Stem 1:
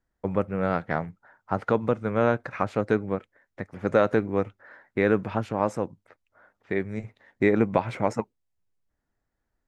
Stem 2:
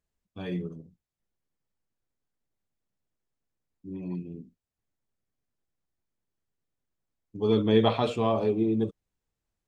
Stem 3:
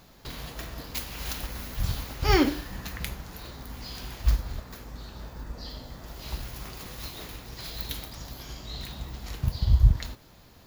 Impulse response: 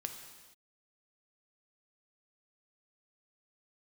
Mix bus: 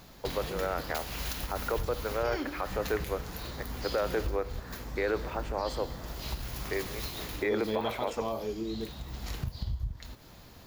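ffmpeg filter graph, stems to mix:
-filter_complex "[0:a]highpass=f=360:w=0.5412,highpass=f=360:w=1.3066,volume=0.531,asplit=2[s0][s1];[s1]volume=0.376[s2];[1:a]equalizer=f=68:w=0.38:g=-8,volume=0.422,asplit=2[s3][s4];[2:a]acompressor=threshold=0.0224:ratio=8,volume=1.26[s5];[s4]apad=whole_len=470334[s6];[s5][s6]sidechaincompress=threshold=0.0112:ratio=8:attack=47:release=815[s7];[3:a]atrim=start_sample=2205[s8];[s2][s8]afir=irnorm=-1:irlink=0[s9];[s0][s3][s7][s9]amix=inputs=4:normalize=0,alimiter=limit=0.1:level=0:latency=1:release=21"

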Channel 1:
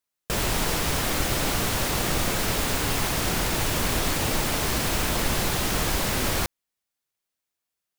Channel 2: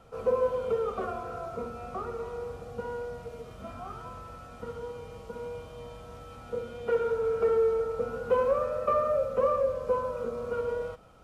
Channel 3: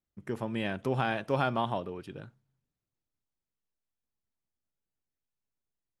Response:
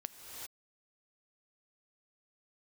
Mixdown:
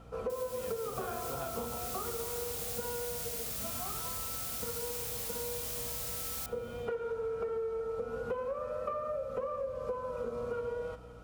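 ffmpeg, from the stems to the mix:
-filter_complex "[0:a]aderivative,volume=0.316,asplit=2[s0][s1];[s1]volume=0.119[s2];[1:a]aeval=exprs='val(0)+0.00251*(sin(2*PI*60*n/s)+sin(2*PI*2*60*n/s)/2+sin(2*PI*3*60*n/s)/3+sin(2*PI*4*60*n/s)/4+sin(2*PI*5*60*n/s)/5)':c=same,volume=0.891,asplit=2[s3][s4];[s4]volume=0.188[s5];[2:a]volume=0.211,asplit=2[s6][s7];[s7]apad=whole_len=351998[s8];[s0][s8]sidechaincompress=threshold=0.00501:ratio=3:attack=49:release=446[s9];[3:a]atrim=start_sample=2205[s10];[s2][s5]amix=inputs=2:normalize=0[s11];[s11][s10]afir=irnorm=-1:irlink=0[s12];[s9][s3][s6][s12]amix=inputs=4:normalize=0,acompressor=threshold=0.0224:ratio=10"

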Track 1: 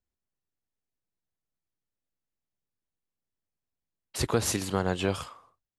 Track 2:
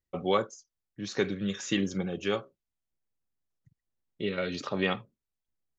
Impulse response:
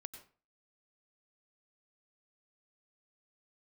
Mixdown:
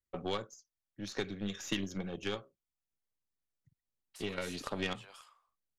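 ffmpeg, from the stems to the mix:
-filter_complex "[0:a]highpass=980,alimiter=level_in=1.5:limit=0.0631:level=0:latency=1,volume=0.668,volume=0.316[s0];[1:a]volume=0.891[s1];[s0][s1]amix=inputs=2:normalize=0,acrossover=split=130|3000[s2][s3][s4];[s3]acompressor=threshold=0.0251:ratio=4[s5];[s2][s5][s4]amix=inputs=3:normalize=0,aeval=exprs='0.188*(cos(1*acos(clip(val(0)/0.188,-1,1)))-cos(1*PI/2))+0.0119*(cos(7*acos(clip(val(0)/0.188,-1,1)))-cos(7*PI/2))+0.00841*(cos(8*acos(clip(val(0)/0.188,-1,1)))-cos(8*PI/2))':c=same"

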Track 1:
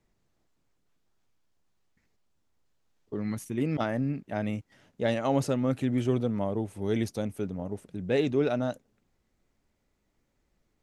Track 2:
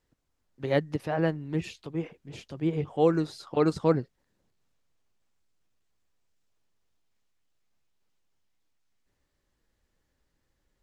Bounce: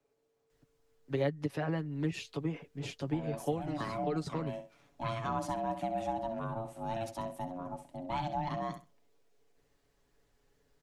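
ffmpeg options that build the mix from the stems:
-filter_complex "[0:a]aeval=exprs='val(0)*sin(2*PI*450*n/s)':c=same,volume=0.631,asplit=3[s0][s1][s2];[s1]volume=0.282[s3];[1:a]adelay=500,volume=1.19[s4];[s2]apad=whole_len=499585[s5];[s4][s5]sidechaincompress=threshold=0.00708:ratio=8:attack=39:release=191[s6];[s3]aecho=0:1:65|130|195:1|0.18|0.0324[s7];[s0][s6][s7]amix=inputs=3:normalize=0,acrossover=split=96|200[s8][s9][s10];[s8]acompressor=threshold=0.00158:ratio=4[s11];[s9]acompressor=threshold=0.00708:ratio=4[s12];[s10]acompressor=threshold=0.02:ratio=4[s13];[s11][s12][s13]amix=inputs=3:normalize=0,aecho=1:1:7.1:0.53"

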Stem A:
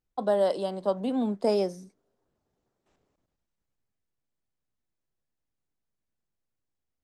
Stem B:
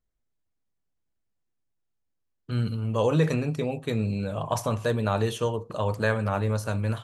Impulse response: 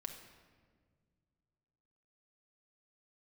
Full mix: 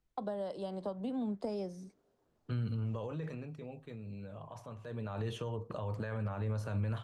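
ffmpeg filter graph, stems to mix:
-filter_complex "[0:a]volume=1.26[s0];[1:a]bass=f=250:g=1,treble=f=4000:g=-7,alimiter=limit=0.0841:level=0:latency=1:release=58,volume=2.24,afade=t=out:st=2.67:d=0.79:silence=0.281838,afade=t=in:st=4.87:d=0.37:silence=0.266073[s1];[s0][s1]amix=inputs=2:normalize=0,highshelf=f=10000:g=-9.5,acrossover=split=140[s2][s3];[s3]acompressor=threshold=0.0141:ratio=8[s4];[s2][s4]amix=inputs=2:normalize=0"

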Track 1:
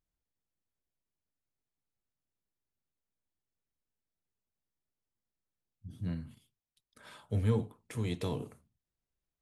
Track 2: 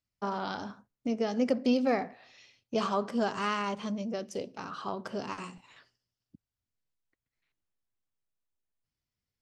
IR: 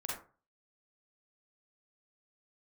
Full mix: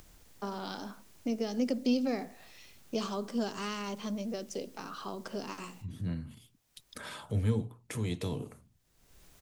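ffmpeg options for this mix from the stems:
-filter_complex "[0:a]bandreject=f=60:t=h:w=6,bandreject=f=120:t=h:w=6,acompressor=mode=upward:threshold=0.02:ratio=2.5,volume=1.12,asplit=2[s0][s1];[1:a]highpass=190,adelay=200,volume=1.33[s2];[s1]apad=whole_len=423987[s3];[s2][s3]sidechaincompress=threshold=0.00178:ratio=5:attack=38:release=1100[s4];[s0][s4]amix=inputs=2:normalize=0,equalizer=f=6500:w=1.5:g=2,acrossover=split=390|3000[s5][s6][s7];[s6]acompressor=threshold=0.00794:ratio=3[s8];[s5][s8][s7]amix=inputs=3:normalize=0"

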